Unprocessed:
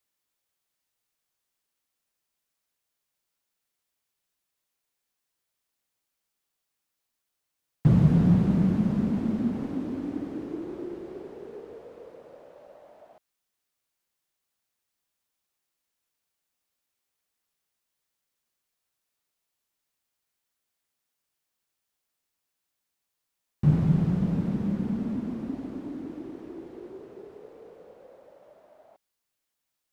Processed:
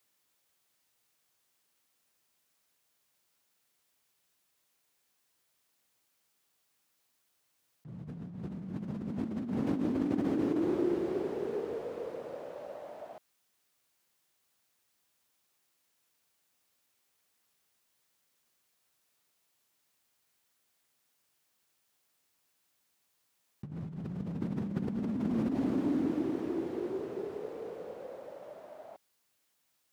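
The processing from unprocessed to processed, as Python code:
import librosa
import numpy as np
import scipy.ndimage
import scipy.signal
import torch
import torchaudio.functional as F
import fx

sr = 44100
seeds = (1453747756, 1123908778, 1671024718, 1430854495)

y = scipy.signal.sosfilt(scipy.signal.butter(2, 79.0, 'highpass', fs=sr, output='sos'), x)
y = fx.over_compress(y, sr, threshold_db=-35.0, ratio=-1.0)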